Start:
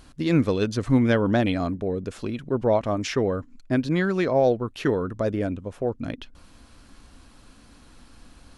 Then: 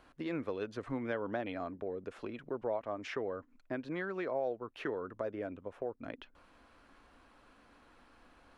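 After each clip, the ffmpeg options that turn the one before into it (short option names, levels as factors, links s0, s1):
-filter_complex "[0:a]acrossover=split=340 2700:gain=0.2 1 0.158[s0][s1][s2];[s0][s1][s2]amix=inputs=3:normalize=0,acompressor=threshold=0.0178:ratio=2,volume=0.631"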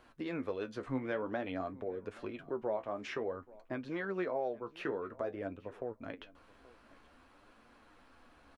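-af "flanger=delay=8:depth=7.5:regen=46:speed=0.52:shape=triangular,aecho=1:1:830|1660:0.0794|0.0135,volume=1.58"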